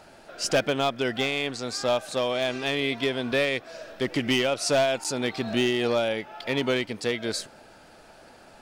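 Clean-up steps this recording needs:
clipped peaks rebuilt −16.5 dBFS
repair the gap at 0:05.04, 6.9 ms

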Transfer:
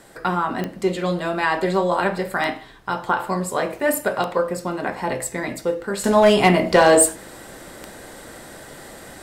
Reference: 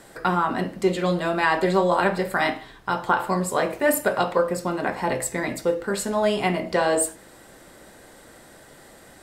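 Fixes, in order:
clipped peaks rebuilt −6.5 dBFS
click removal
level 0 dB, from 0:06.04 −8.5 dB

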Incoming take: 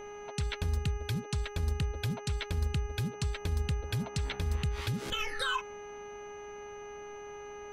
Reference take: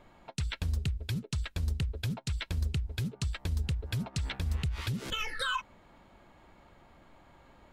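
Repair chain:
hum removal 412.7 Hz, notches 7
notch filter 6,100 Hz, Q 30

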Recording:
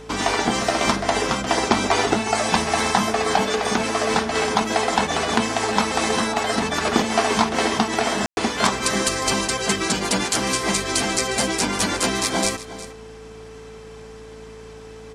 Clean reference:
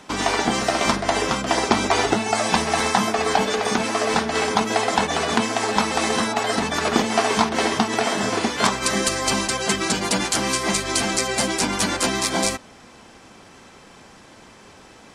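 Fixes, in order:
hum removal 54.8 Hz, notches 5
notch filter 440 Hz, Q 30
ambience match 0:08.26–0:08.37
echo removal 359 ms −15.5 dB

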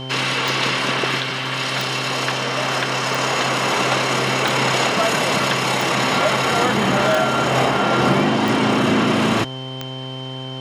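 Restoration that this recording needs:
click removal
hum removal 130.9 Hz, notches 8
notch filter 3,100 Hz, Q 30

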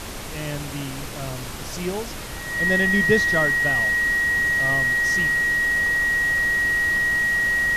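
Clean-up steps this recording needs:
notch filter 1,900 Hz, Q 30
noise reduction from a noise print 30 dB

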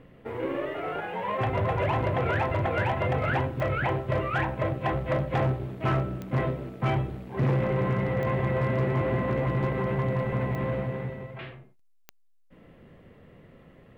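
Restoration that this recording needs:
clipped peaks rebuilt −18 dBFS
click removal

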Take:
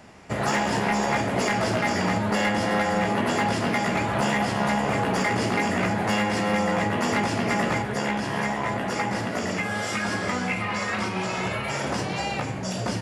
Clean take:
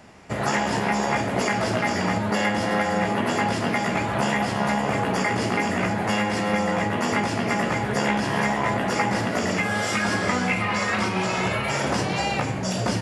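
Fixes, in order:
clipped peaks rebuilt −17 dBFS
level 0 dB, from 0:07.82 +3.5 dB

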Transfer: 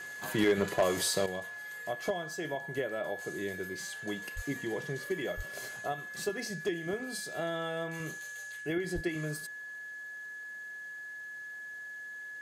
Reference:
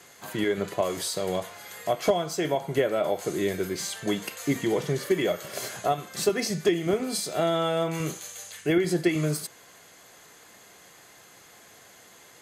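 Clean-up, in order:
clipped peaks rebuilt −19.5 dBFS
notch filter 1,700 Hz, Q 30
high-pass at the plosives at 0:04.35/0:05.36/0:08.94
level 0 dB, from 0:01.26 +10.5 dB

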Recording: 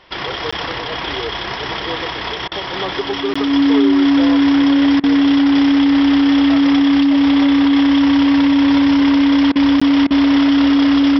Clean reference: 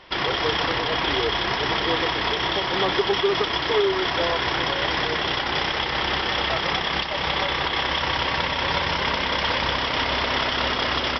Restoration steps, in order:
notch filter 280 Hz, Q 30
repair the gap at 0:00.51/0:03.34/0:09.80, 15 ms
repair the gap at 0:02.48/0:05.00/0:09.52/0:10.07, 35 ms

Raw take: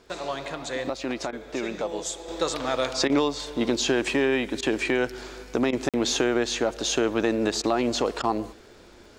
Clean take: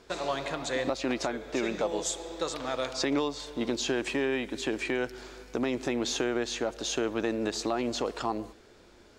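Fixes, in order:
click removal
repair the gap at 0:05.89, 47 ms
repair the gap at 0:01.31/0:03.08/0:04.61/0:05.71/0:07.62/0:08.22, 15 ms
level 0 dB, from 0:02.28 −6 dB

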